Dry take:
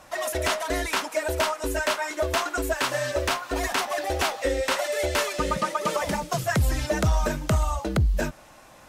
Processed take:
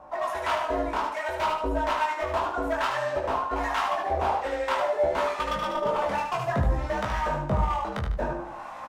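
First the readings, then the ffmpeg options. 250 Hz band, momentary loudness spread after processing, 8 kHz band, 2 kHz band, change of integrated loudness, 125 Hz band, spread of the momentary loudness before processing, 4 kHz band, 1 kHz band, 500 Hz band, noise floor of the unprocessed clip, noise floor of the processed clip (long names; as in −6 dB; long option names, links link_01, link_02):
−3.5 dB, 4 LU, −15.5 dB, −4.0 dB, −1.5 dB, −5.0 dB, 3 LU, −7.5 dB, +3.0 dB, −1.0 dB, −50 dBFS, −39 dBFS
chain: -filter_complex "[0:a]lowpass=frequency=1600:poles=1,equalizer=frequency=950:width_type=o:width=1.2:gain=13.5,bandreject=frequency=171.9:width_type=h:width=4,bandreject=frequency=343.8:width_type=h:width=4,bandreject=frequency=515.7:width_type=h:width=4,bandreject=frequency=687.6:width_type=h:width=4,bandreject=frequency=859.5:width_type=h:width=4,bandreject=frequency=1031.4:width_type=h:width=4,bandreject=frequency=1203.3:width_type=h:width=4,bandreject=frequency=1375.2:width_type=h:width=4,bandreject=frequency=1547.1:width_type=h:width=4,bandreject=frequency=1719:width_type=h:width=4,bandreject=frequency=1890.9:width_type=h:width=4,bandreject=frequency=2062.8:width_type=h:width=4,bandreject=frequency=2234.7:width_type=h:width=4,bandreject=frequency=2406.6:width_type=h:width=4,bandreject=frequency=2578.5:width_type=h:width=4,bandreject=frequency=2750.4:width_type=h:width=4,bandreject=frequency=2922.3:width_type=h:width=4,bandreject=frequency=3094.2:width_type=h:width=4,bandreject=frequency=3266.1:width_type=h:width=4,bandreject=frequency=3438:width_type=h:width=4,bandreject=frequency=3609.9:width_type=h:width=4,bandreject=frequency=3781.8:width_type=h:width=4,bandreject=frequency=3953.7:width_type=h:width=4,bandreject=frequency=4125.6:width_type=h:width=4,bandreject=frequency=4297.5:width_type=h:width=4,bandreject=frequency=4469.4:width_type=h:width=4,bandreject=frequency=4641.3:width_type=h:width=4,bandreject=frequency=4813.2:width_type=h:width=4,bandreject=frequency=4985.1:width_type=h:width=4,bandreject=frequency=5157:width_type=h:width=4,bandreject=frequency=5328.9:width_type=h:width=4,bandreject=frequency=5500.8:width_type=h:width=4,bandreject=frequency=5672.7:width_type=h:width=4,areverse,acompressor=mode=upward:threshold=-23dB:ratio=2.5,areverse,asoftclip=type=hard:threshold=-16.5dB,flanger=delay=18.5:depth=5.9:speed=0.56,acrossover=split=900[link_01][link_02];[link_01]aeval=exprs='val(0)*(1-0.7/2+0.7/2*cos(2*PI*1.2*n/s))':channel_layout=same[link_03];[link_02]aeval=exprs='val(0)*(1-0.7/2-0.7/2*cos(2*PI*1.2*n/s))':channel_layout=same[link_04];[link_03][link_04]amix=inputs=2:normalize=0,asplit=2[link_05][link_06];[link_06]adelay=15,volume=-8dB[link_07];[link_05][link_07]amix=inputs=2:normalize=0,asplit=2[link_08][link_09];[link_09]aecho=0:1:75|150|225|300:0.531|0.191|0.0688|0.0248[link_10];[link_08][link_10]amix=inputs=2:normalize=0"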